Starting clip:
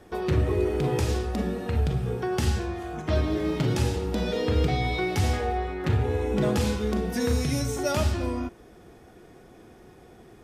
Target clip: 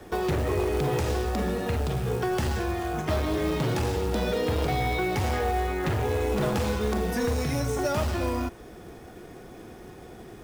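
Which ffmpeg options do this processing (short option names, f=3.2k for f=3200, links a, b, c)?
-filter_complex "[0:a]aeval=exprs='0.251*sin(PI/2*2*val(0)/0.251)':c=same,acrossover=split=180|380|2100[a][b][c][d];[a]acompressor=threshold=-24dB:ratio=4[e];[b]acompressor=threshold=-35dB:ratio=4[f];[c]acompressor=threshold=-22dB:ratio=4[g];[d]acompressor=threshold=-36dB:ratio=4[h];[e][f][g][h]amix=inputs=4:normalize=0,acrusher=bits=5:mode=log:mix=0:aa=0.000001,volume=-4dB"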